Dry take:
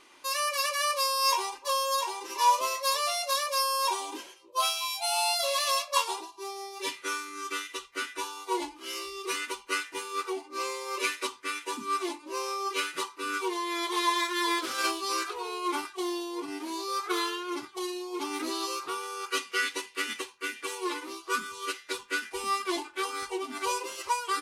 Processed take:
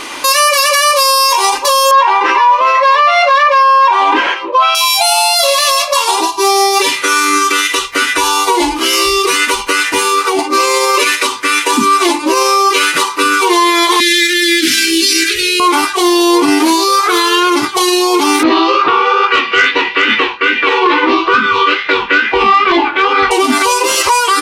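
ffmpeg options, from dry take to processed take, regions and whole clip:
ffmpeg -i in.wav -filter_complex "[0:a]asettb=1/sr,asplit=3[link_01][link_02][link_03];[link_01]atrim=end=1.914[link_04];[link_02]atrim=start=1.91:end=4.75,asetpts=PTS-STARTPTS,afade=type=in:duration=0.004:curve=qsin,afade=type=out:start_time=2.836:duration=0.004:curve=qsin,highpass=120,lowpass=2400,equalizer=frequency=1600:width=0.55:gain=13[link_05];[link_03]atrim=start=4.746[link_06];[link_04][link_05]acrossfade=duration=0.004:curve1=hsin:curve2=qsin[link_07];[link_07][link_06]acrossfade=duration=0.004:curve1=qsin:curve2=hsin,asettb=1/sr,asplit=3[link_08][link_09][link_10];[link_08]atrim=end=7.924[link_11];[link_09]atrim=start=7.92:end=10.39,asetpts=PTS-STARTPTS,afade=type=in:duration=0.004:curve=qsin,afade=type=out:start_time=2.466:duration=0.004:curve=qsin,lowshelf=frequency=110:gain=8.5,acompressor=threshold=-40dB:ratio=3:attack=3.2:release=140:knee=1:detection=peak[link_12];[link_10]atrim=start=10.386[link_13];[link_11][link_12]acrossfade=duration=0.004:curve1=hsin:curve2=qsin[link_14];[link_14][link_13]acrossfade=duration=0.004:curve1=qsin:curve2=hsin,asettb=1/sr,asplit=3[link_15][link_16][link_17];[link_15]atrim=end=14.004[link_18];[link_16]atrim=start=14:end=15.6,asetpts=PTS-STARTPTS,afade=type=in:duration=0.004:curve=qsin,afade=type=out:start_time=1.596:duration=0.004:curve=qsin,asuperstop=centerf=760:order=12:qfactor=0.54,equalizer=frequency=610:width=0.48:gain=7.5[link_19];[link_17]atrim=start=15.596[link_20];[link_18][link_19]acrossfade=duration=0.004:curve1=hsin:curve2=qsin[link_21];[link_21][link_20]acrossfade=duration=0.004:curve1=qsin:curve2=hsin,asettb=1/sr,asplit=3[link_22][link_23][link_24];[link_22]atrim=end=18.434[link_25];[link_23]atrim=start=18.43:end=23.31,asetpts=PTS-STARTPTS,afade=type=in:duration=0.004:curve=qsin,afade=type=out:start_time=4.876:duration=0.004:curve=qsin,lowpass=frequency=3200:width=0.5412,lowpass=frequency=3200:width=1.3066,flanger=delay=18:depth=6.4:speed=2.3,aeval=exprs='0.112*sin(PI/2*1.41*val(0)/0.112)':channel_layout=same[link_26];[link_24]atrim=start=23.306[link_27];[link_25][link_26]acrossfade=duration=0.004:curve1=hsin:curve2=qsin[link_28];[link_28][link_27]acrossfade=duration=0.004:curve1=qsin:curve2=hsin,bandreject=frequency=370:width=12,acompressor=threshold=-36dB:ratio=4,alimiter=level_in=33dB:limit=-1dB:release=50:level=0:latency=1,volume=-1dB" out.wav

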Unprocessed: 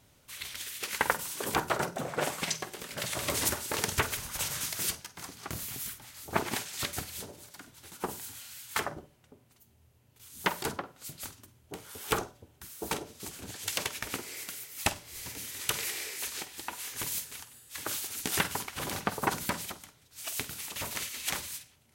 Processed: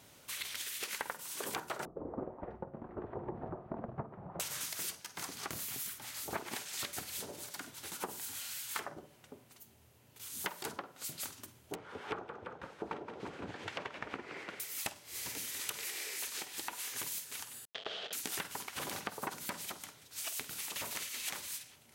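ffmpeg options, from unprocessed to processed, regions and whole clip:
ffmpeg -i in.wav -filter_complex "[0:a]asettb=1/sr,asplit=3[link_01][link_02][link_03];[link_01]atrim=end=1.854[link_04];[link_02]atrim=start=1.85:end=4.4,asetpts=PTS-STARTPTS,afade=type=in:duration=0.004:curve=qsin,afade=type=out:start_time=2.546:duration=0.004:curve=qsin,lowpass=frequency=1000:width=0.5412,lowpass=frequency=1000:width=1.3066,afreqshift=-220[link_05];[link_03]atrim=start=4.396[link_06];[link_04][link_05]acrossfade=duration=0.004:curve1=hsin:curve2=qsin[link_07];[link_07][link_06]acrossfade=duration=0.004:curve1=qsin:curve2=hsin,asettb=1/sr,asplit=3[link_08][link_09][link_10];[link_08]atrim=end=11.754[link_11];[link_09]atrim=start=11.75:end=14.6,asetpts=PTS-STARTPTS,afade=type=in:duration=0.004:curve=qsin,afade=type=out:start_time=2.846:duration=0.004:curve=qsin,lowpass=1700,asplit=6[link_12][link_13][link_14][link_15][link_16][link_17];[link_13]adelay=170,afreqshift=31,volume=-13dB[link_18];[link_14]adelay=340,afreqshift=62,volume=-18.7dB[link_19];[link_15]adelay=510,afreqshift=93,volume=-24.4dB[link_20];[link_16]adelay=680,afreqshift=124,volume=-30dB[link_21];[link_17]adelay=850,afreqshift=155,volume=-35.7dB[link_22];[link_12][link_18][link_19][link_20][link_21][link_22]amix=inputs=6:normalize=0,atrim=end_sample=125685[link_23];[link_10]atrim=start=14.596[link_24];[link_11][link_23]acrossfade=duration=0.004:curve1=hsin:curve2=qsin[link_25];[link_25][link_24]acrossfade=duration=0.004:curve1=qsin:curve2=hsin,asettb=1/sr,asplit=3[link_26][link_27][link_28];[link_26]atrim=end=17.654[link_29];[link_27]atrim=start=17.65:end=18.13,asetpts=PTS-STARTPTS,afade=type=in:duration=0.004:curve=qsin,afade=type=out:start_time=0.476:duration=0.004:curve=qsin,acrusher=bits=3:dc=4:mix=0:aa=0.000001,highpass=170,equalizer=frequency=310:width_type=q:width=4:gain=-10,equalizer=frequency=450:width_type=q:width=4:gain=9,equalizer=frequency=660:width_type=q:width=4:gain=9,equalizer=frequency=980:width_type=q:width=4:gain=-7,equalizer=frequency=2200:width_type=q:width=4:gain=-5,equalizer=frequency=3200:width_type=q:width=4:gain=9,lowpass=frequency=3900:width=0.5412,lowpass=frequency=3900:width=1.3066[link_30];[link_28]atrim=start=18.126[link_31];[link_29][link_30]acrossfade=duration=0.004:curve1=hsin:curve2=qsin[link_32];[link_32][link_31]acrossfade=duration=0.004:curve1=qsin:curve2=hsin,highpass=frequency=230:poles=1,acompressor=threshold=-44dB:ratio=5,volume=5.5dB" out.wav

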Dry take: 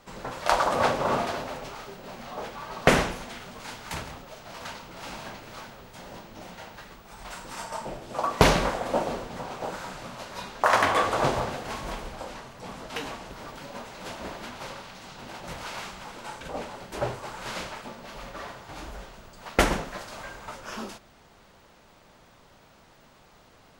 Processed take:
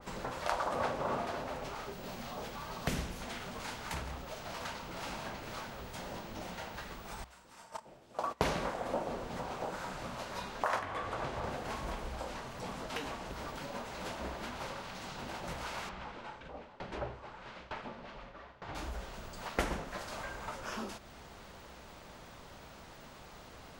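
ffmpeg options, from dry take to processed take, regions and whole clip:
ffmpeg -i in.wav -filter_complex "[0:a]asettb=1/sr,asplit=3[link_01][link_02][link_03];[link_01]atrim=end=1.924[link_04];[link_02]atrim=start=1.92:end=3.22,asetpts=PTS-STARTPTS,afade=type=in:duration=0.004:curve=qsin,afade=type=out:start_time=1.296:duration=0.004:curve=qsin,equalizer=frequency=14000:width=3.6:gain=9.5,acrossover=split=260|3000[link_05][link_06][link_07];[link_06]acompressor=threshold=-50dB:ratio=1.5:attack=3.2:release=140:knee=2.83:detection=peak[link_08];[link_05][link_08][link_07]amix=inputs=3:normalize=0[link_09];[link_03]atrim=start=3.216[link_10];[link_04][link_09]acrossfade=duration=0.004:curve1=hsin:curve2=qsin[link_11];[link_11][link_10]acrossfade=duration=0.004:curve1=qsin:curve2=hsin,asettb=1/sr,asplit=3[link_12][link_13][link_14];[link_12]atrim=end=7.244[link_15];[link_13]atrim=start=7.24:end=8.78,asetpts=PTS-STARTPTS,afade=type=in:duration=0.004:curve=qsin,afade=type=out:start_time=1.536:duration=0.004:curve=qsin,highpass=frequency=78:poles=1,agate=range=-21dB:threshold=-32dB:ratio=16:release=100:detection=peak[link_16];[link_14]atrim=start=8.776[link_17];[link_15][link_16]acrossfade=duration=0.004:curve1=hsin:curve2=qsin[link_18];[link_18][link_17]acrossfade=duration=0.004:curve1=qsin:curve2=hsin,asettb=1/sr,asplit=3[link_19][link_20][link_21];[link_19]atrim=end=10.794[link_22];[link_20]atrim=start=10.79:end=11.44,asetpts=PTS-STARTPTS,afade=type=in:duration=0.004:curve=qsin,afade=type=out:start_time=0.646:duration=0.004:curve=qsin,highshelf=frequency=5000:gain=-9.5,acrossover=split=170|1500[link_23][link_24][link_25];[link_23]acompressor=threshold=-40dB:ratio=4[link_26];[link_24]acompressor=threshold=-33dB:ratio=4[link_27];[link_25]acompressor=threshold=-35dB:ratio=4[link_28];[link_26][link_27][link_28]amix=inputs=3:normalize=0[link_29];[link_21]atrim=start=11.436[link_30];[link_22][link_29]acrossfade=duration=0.004:curve1=hsin:curve2=qsin[link_31];[link_31][link_30]acrossfade=duration=0.004:curve1=qsin:curve2=hsin,asettb=1/sr,asplit=3[link_32][link_33][link_34];[link_32]atrim=end=15.894[link_35];[link_33]atrim=start=15.89:end=18.75,asetpts=PTS-STARTPTS,afade=type=in:duration=0.004:curve=qsin,afade=type=out:start_time=2.856:duration=0.004:curve=qsin,lowpass=3400,aeval=exprs='val(0)*pow(10,-21*if(lt(mod(1.1*n/s,1),2*abs(1.1)/1000),1-mod(1.1*n/s,1)/(2*abs(1.1)/1000),(mod(1.1*n/s,1)-2*abs(1.1)/1000)/(1-2*abs(1.1)/1000))/20)':channel_layout=same[link_36];[link_34]atrim=start=18.746[link_37];[link_35][link_36]acrossfade=duration=0.004:curve1=hsin:curve2=qsin[link_38];[link_38][link_37]acrossfade=duration=0.004:curve1=qsin:curve2=hsin,equalizer=frequency=64:width_type=o:width=0.22:gain=10,acompressor=threshold=-46dB:ratio=2,adynamicequalizer=threshold=0.00316:dfrequency=2200:dqfactor=0.7:tfrequency=2200:tqfactor=0.7:attack=5:release=100:ratio=0.375:range=2:mode=cutabove:tftype=highshelf,volume=3.5dB" out.wav

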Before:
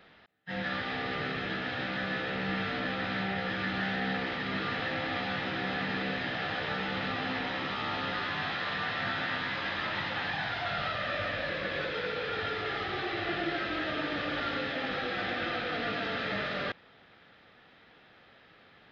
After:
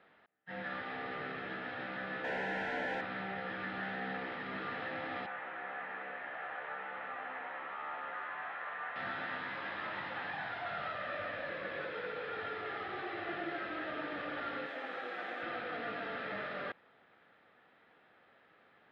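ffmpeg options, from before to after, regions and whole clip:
ffmpeg -i in.wav -filter_complex "[0:a]asettb=1/sr,asplit=3[link_01][link_02][link_03];[link_01]atrim=end=2.244[link_04];[link_02]atrim=start=2.24:end=3.01,asetpts=PTS-STARTPTS,afade=type=in:duration=0.004:curve=qsin,afade=type=out:start_time=0.766:duration=0.004:curve=qsin,asplit=2[link_05][link_06];[link_06]highpass=frequency=720:poles=1,volume=34dB,asoftclip=type=tanh:threshold=-20.5dB[link_07];[link_05][link_07]amix=inputs=2:normalize=0,lowpass=frequency=1400:poles=1,volume=-6dB,asuperstop=centerf=1200:order=8:qfactor=3.4[link_08];[link_03]atrim=start=3.006[link_09];[link_04][link_08]acrossfade=duration=0.004:curve1=hsin:curve2=qsin[link_10];[link_10][link_09]acrossfade=duration=0.004:curve1=qsin:curve2=hsin,asettb=1/sr,asplit=3[link_11][link_12][link_13];[link_11]atrim=end=5.264[link_14];[link_12]atrim=start=5.26:end=8.96,asetpts=PTS-STARTPTS,afade=type=in:duration=0.004:curve=qsin,afade=type=out:start_time=3.696:duration=0.004:curve=qsin,acrossover=split=500 3000:gain=0.158 1 0.158[link_15][link_16][link_17];[link_15][link_16][link_17]amix=inputs=3:normalize=0,acrossover=split=3100[link_18][link_19];[link_19]acompressor=threshold=-58dB:ratio=4:attack=1:release=60[link_20];[link_18][link_20]amix=inputs=2:normalize=0[link_21];[link_13]atrim=start=8.956[link_22];[link_14][link_21]acrossfade=duration=0.004:curve1=hsin:curve2=qsin[link_23];[link_23][link_22]acrossfade=duration=0.004:curve1=qsin:curve2=hsin,asettb=1/sr,asplit=3[link_24][link_25][link_26];[link_24]atrim=end=14.664[link_27];[link_25]atrim=start=14.66:end=15.43,asetpts=PTS-STARTPTS,afade=type=in:duration=0.004:curve=qsin,afade=type=out:start_time=0.766:duration=0.004:curve=qsin,highpass=280,aeval=exprs='sgn(val(0))*max(abs(val(0))-0.00299,0)':channel_layout=same[link_28];[link_26]atrim=start=15.426[link_29];[link_27][link_28]acrossfade=duration=0.004:curve1=hsin:curve2=qsin[link_30];[link_30][link_29]acrossfade=duration=0.004:curve1=qsin:curve2=hsin,lowpass=1700,aemphasis=mode=production:type=bsi,volume=-4.5dB" out.wav

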